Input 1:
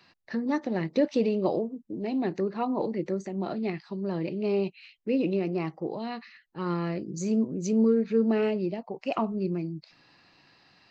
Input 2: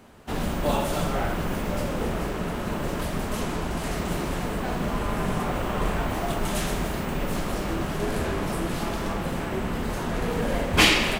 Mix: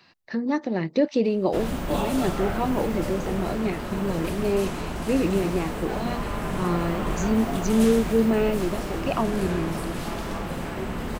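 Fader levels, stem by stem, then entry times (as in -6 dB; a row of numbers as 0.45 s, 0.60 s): +3.0 dB, -2.0 dB; 0.00 s, 1.25 s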